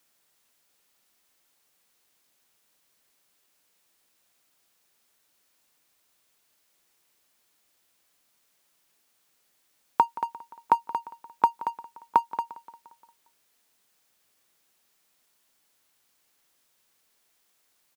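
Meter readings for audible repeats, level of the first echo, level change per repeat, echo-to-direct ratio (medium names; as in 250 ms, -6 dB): 4, -18.0 dB, -5.0 dB, -16.5 dB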